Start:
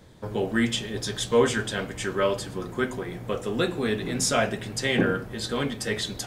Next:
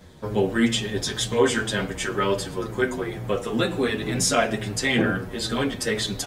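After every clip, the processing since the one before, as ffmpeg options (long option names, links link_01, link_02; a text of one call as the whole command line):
ffmpeg -i in.wav -filter_complex "[0:a]asplit=2[link_01][link_02];[link_02]alimiter=limit=-17.5dB:level=0:latency=1:release=95,volume=-1dB[link_03];[link_01][link_03]amix=inputs=2:normalize=0,asplit=2[link_04][link_05];[link_05]adelay=7.8,afreqshift=-2.1[link_06];[link_04][link_06]amix=inputs=2:normalize=1,volume=1.5dB" out.wav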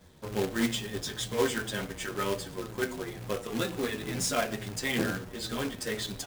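ffmpeg -i in.wav -af "acrusher=bits=2:mode=log:mix=0:aa=0.000001,asoftclip=type=tanh:threshold=-9dB,aeval=exprs='0.355*(cos(1*acos(clip(val(0)/0.355,-1,1)))-cos(1*PI/2))+0.0447*(cos(3*acos(clip(val(0)/0.355,-1,1)))-cos(3*PI/2))':channel_layout=same,volume=-5dB" out.wav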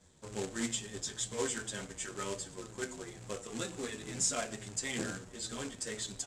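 ffmpeg -i in.wav -af "lowpass=frequency=7600:width_type=q:width=5.1,volume=-8.5dB" out.wav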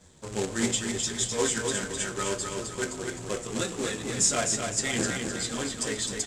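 ffmpeg -i in.wav -af "aecho=1:1:257|514|771|1028|1285:0.562|0.231|0.0945|0.0388|0.0159,volume=8dB" out.wav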